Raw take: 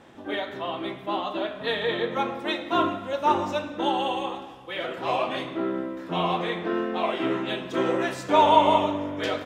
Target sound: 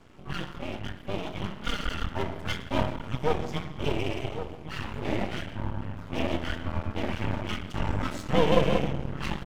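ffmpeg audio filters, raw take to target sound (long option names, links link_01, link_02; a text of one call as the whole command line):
ffmpeg -i in.wav -filter_complex "[0:a]asplit=2[link_01][link_02];[link_02]adelay=1108,volume=-9dB,highshelf=frequency=4000:gain=-24.9[link_03];[link_01][link_03]amix=inputs=2:normalize=0,afreqshift=-430,aeval=exprs='max(val(0),0)':channel_layout=same" out.wav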